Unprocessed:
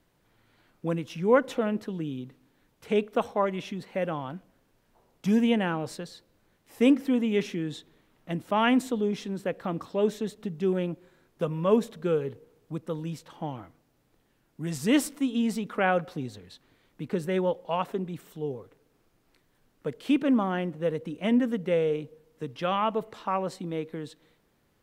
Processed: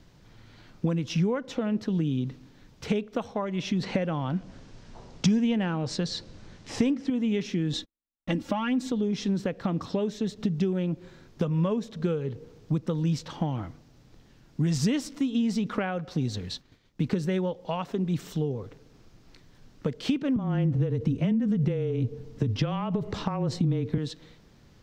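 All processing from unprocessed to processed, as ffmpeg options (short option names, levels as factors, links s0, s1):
-filter_complex "[0:a]asettb=1/sr,asplit=3[s0][s1][s2];[s0]atrim=end=3.834[s3];[s1]atrim=start=3.83:end=7.1,asetpts=PTS-STARTPTS,afade=t=in:d=0.004:c=qsin,afade=t=out:st=3.266:d=0.004:c=qsin,lowpass=f=9000:w=0.5412,lowpass=f=9000:w=1.3066,acontrast=63[s4];[s2]atrim=start=7.096[s5];[s3][s4]acrossfade=d=0.004:c1=hsin:c2=qsin[s6];[s6][s5]acrossfade=d=0.004:c1=qsin:c2=hsin,asettb=1/sr,asplit=3[s7][s8][s9];[s7]atrim=end=7.734[s10];[s8]atrim=start=7.73:end=8.92,asetpts=PTS-STARTPTS,afade=t=in:d=0.004:c=qsin,afade=t=out:st=1.186:d=0.004:c=qsin,agate=range=0.002:threshold=0.002:ratio=16:release=100:detection=peak,aecho=1:1:3.6:0.92,atrim=end_sample=52479,acompressor=threshold=0.1:ratio=2.5:attack=3.2:release=140:knee=1:detection=peak[s11];[s9]atrim=start=8.916[s12];[s10][s11]acrossfade=d=0.004:c1=hsin:c2=qsin[s13];[s13][s12]acrossfade=d=0.004:c1=qsin:c2=hsin,asettb=1/sr,asplit=3[s14][s15][s16];[s14]atrim=end=16.104[s17];[s15]atrim=start=16.1:end=18.41,asetpts=PTS-STARTPTS,afade=t=in:d=0.004:c=qsin,afade=t=out:st=2.306:d=0.004:c=qsin,agate=range=0.0224:threshold=0.00141:ratio=3:release=100:detection=peak,highshelf=f=5200:g=4[s18];[s16]atrim=start=18.406[s19];[s17][s18]acrossfade=d=0.004:c1=hsin:c2=qsin[s20];[s20][s19]acrossfade=d=0.004:c1=qsin:c2=hsin,asettb=1/sr,asplit=3[s21][s22][s23];[s21]atrim=end=20.364[s24];[s22]atrim=start=20.36:end=23.98,asetpts=PTS-STARTPTS,afade=t=in:d=0.004:c=qsin,afade=t=out:st=3.616:d=0.004:c=qsin,acompressor=threshold=0.0224:ratio=5:attack=3.2:release=140:knee=1:detection=peak,afreqshift=-21,lowshelf=f=440:g=9.5[s25];[s23]atrim=start=23.976[s26];[s24][s25]acrossfade=d=0.004:c1=hsin:c2=qsin[s27];[s27][s26]acrossfade=d=0.004:c1=qsin:c2=hsin,highshelf=f=7700:t=q:w=1.5:g=-12,acompressor=threshold=0.0158:ratio=6,bass=f=250:g=9,treble=f=4000:g=5,volume=2.37"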